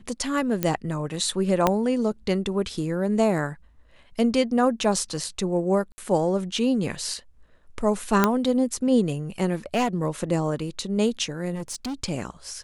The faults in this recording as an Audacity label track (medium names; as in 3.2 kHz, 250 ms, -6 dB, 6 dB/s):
0.630000	0.630000	pop -9 dBFS
1.670000	1.670000	pop -5 dBFS
5.920000	5.980000	dropout 60 ms
8.240000	8.240000	pop -4 dBFS
9.530000	9.880000	clipped -17.5 dBFS
11.540000	11.940000	clipped -27.5 dBFS